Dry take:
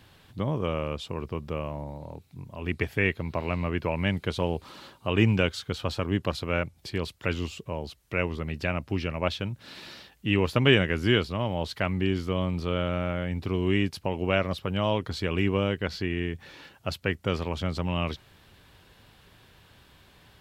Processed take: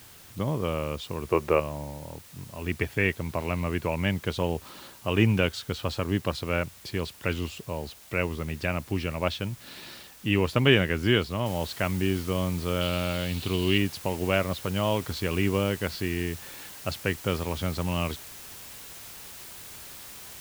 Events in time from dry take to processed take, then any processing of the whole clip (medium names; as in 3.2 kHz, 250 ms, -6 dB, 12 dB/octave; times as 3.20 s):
1.31–1.60 s: time-frequency box 310–2800 Hz +12 dB
11.46 s: noise floor step -51 dB -44 dB
12.81–13.78 s: high-order bell 3.4 kHz +9.5 dB 1 oct